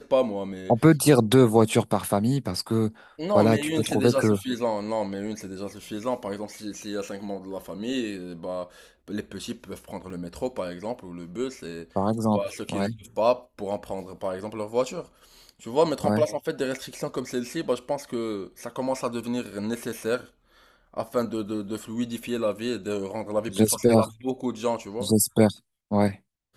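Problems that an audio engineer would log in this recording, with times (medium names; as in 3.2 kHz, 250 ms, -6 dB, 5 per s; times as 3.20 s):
10.10 s: dropout 3 ms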